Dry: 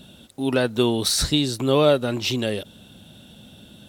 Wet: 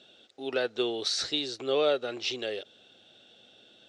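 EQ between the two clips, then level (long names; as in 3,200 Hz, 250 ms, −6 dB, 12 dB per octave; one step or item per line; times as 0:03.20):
loudspeaker in its box 150–6,100 Hz, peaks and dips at 170 Hz −8 dB, 580 Hz −5 dB, 1,000 Hz −9 dB
low shelf with overshoot 320 Hz −11 dB, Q 1.5
notch filter 930 Hz, Q 19
−6.0 dB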